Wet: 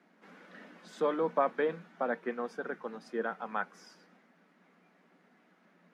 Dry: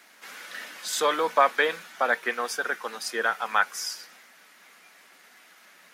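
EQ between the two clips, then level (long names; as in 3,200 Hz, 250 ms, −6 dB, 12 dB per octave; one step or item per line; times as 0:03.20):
resonant band-pass 140 Hz, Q 1.2
mains-hum notches 50/100/150 Hz
+8.5 dB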